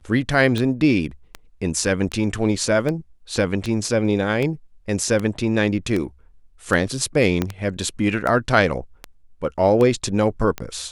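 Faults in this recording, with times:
scratch tick 78 rpm −12 dBFS
0:07.42: click −8 dBFS

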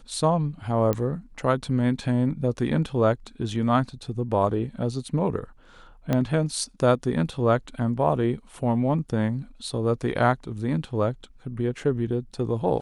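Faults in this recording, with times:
0:00.93: click −13 dBFS
0:06.13: click −11 dBFS

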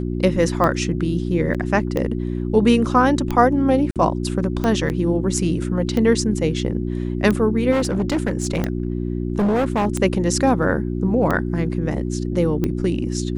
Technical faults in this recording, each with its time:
mains hum 60 Hz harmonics 6 −24 dBFS
scratch tick 45 rpm −10 dBFS
0:01.54–0:01.55: drop-out 6.8 ms
0:03.91–0:03.96: drop-out 47 ms
0:04.89–0:04.90: drop-out 9.3 ms
0:07.71–0:09.87: clipping −15.5 dBFS

